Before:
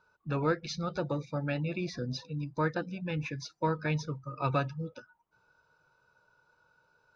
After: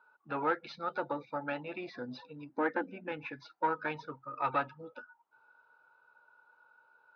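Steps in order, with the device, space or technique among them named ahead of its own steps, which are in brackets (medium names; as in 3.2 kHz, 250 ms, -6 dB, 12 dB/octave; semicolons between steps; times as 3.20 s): 2.49–3.12 s: graphic EQ 125/250/500/1000/2000/4000 Hz -10/+12/+3/-9/+7/-10 dB; guitar amplifier (valve stage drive 20 dB, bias 0.4; tone controls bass -13 dB, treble -5 dB; cabinet simulation 100–4000 Hz, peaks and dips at 170 Hz -8 dB, 250 Hz +7 dB, 850 Hz +9 dB, 1.4 kHz +8 dB); trim -1 dB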